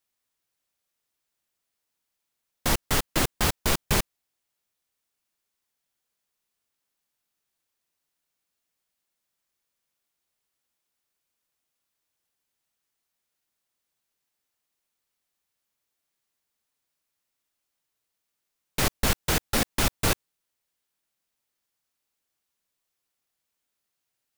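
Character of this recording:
background noise floor −82 dBFS
spectral slope −3.0 dB per octave

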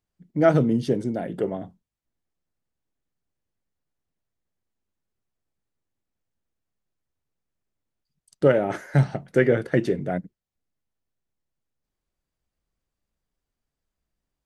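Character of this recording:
background noise floor −86 dBFS
spectral slope −6.0 dB per octave

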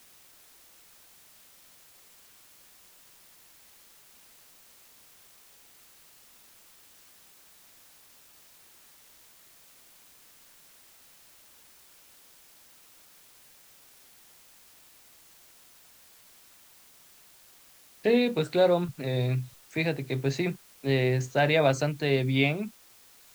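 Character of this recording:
a quantiser's noise floor 10 bits, dither triangular

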